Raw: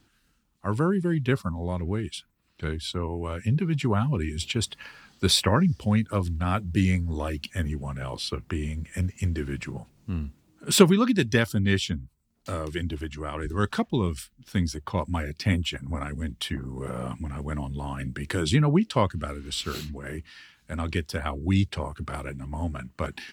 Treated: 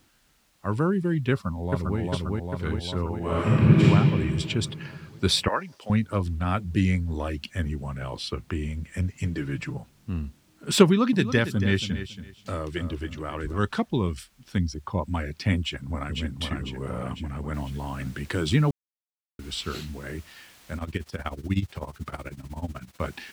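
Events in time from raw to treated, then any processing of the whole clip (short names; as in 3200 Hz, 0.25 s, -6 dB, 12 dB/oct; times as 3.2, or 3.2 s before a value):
1.32–1.99 echo throw 0.4 s, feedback 70%, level -1 dB
3.17–3.84 reverb throw, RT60 2.4 s, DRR -8.5 dB
5.48–5.9 HPF 580 Hz
9.13–9.77 comb 6.8 ms
10.85–13.59 feedback echo 0.278 s, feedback 22%, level -11.5 dB
14.58–15.07 formant sharpening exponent 1.5
15.59–16.18 echo throw 0.5 s, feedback 55%, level -3.5 dB
17.54 noise floor step -62 dB -50 dB
18.71–19.39 mute
20.77–23 tremolo 16 Hz, depth 84%
whole clip: high shelf 8500 Hz -10 dB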